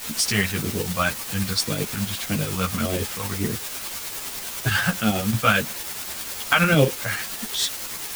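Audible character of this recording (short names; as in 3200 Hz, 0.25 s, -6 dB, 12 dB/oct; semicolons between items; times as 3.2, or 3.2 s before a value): phasing stages 2, 1.8 Hz, lowest notch 330–1200 Hz; a quantiser's noise floor 6-bit, dither triangular; tremolo saw up 9.8 Hz, depth 50%; a shimmering, thickened sound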